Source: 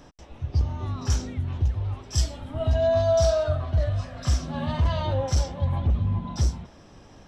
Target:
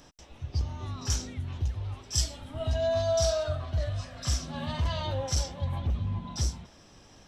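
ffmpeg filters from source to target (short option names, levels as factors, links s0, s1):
-af "highshelf=f=2400:g=10.5,volume=0.473"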